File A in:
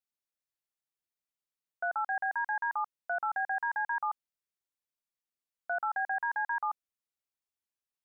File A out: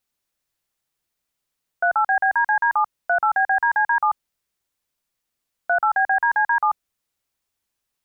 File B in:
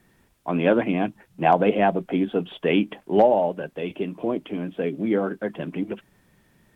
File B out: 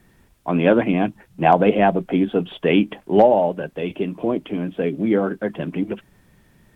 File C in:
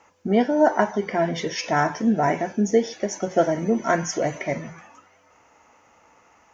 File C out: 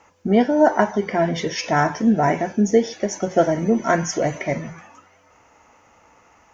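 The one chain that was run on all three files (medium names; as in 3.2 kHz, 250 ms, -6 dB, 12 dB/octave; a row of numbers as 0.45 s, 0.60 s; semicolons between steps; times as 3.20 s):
bass shelf 110 Hz +7 dB; normalise loudness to -20 LUFS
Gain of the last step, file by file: +13.0 dB, +3.0 dB, +2.0 dB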